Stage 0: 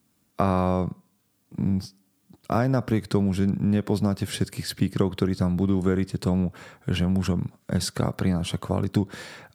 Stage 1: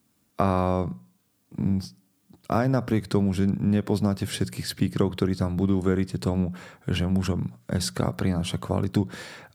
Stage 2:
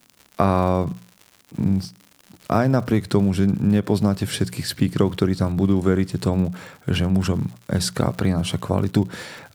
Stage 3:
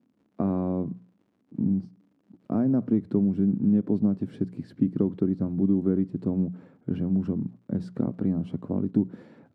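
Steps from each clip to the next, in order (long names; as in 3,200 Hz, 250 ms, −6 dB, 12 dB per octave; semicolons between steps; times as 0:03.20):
mains-hum notches 60/120/180 Hz
surface crackle 130 per second −38 dBFS; level +4.5 dB
resonant band-pass 250 Hz, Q 2.3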